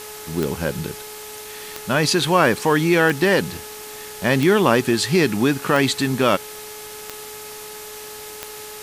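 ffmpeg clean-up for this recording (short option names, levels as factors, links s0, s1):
-af "adeclick=t=4,bandreject=f=424.9:t=h:w=4,bandreject=f=849.8:t=h:w=4,bandreject=f=1274.7:t=h:w=4,bandreject=f=1699.6:t=h:w=4,bandreject=f=2124.5:t=h:w=4,bandreject=f=2549.4:t=h:w=4,afwtdn=0.016"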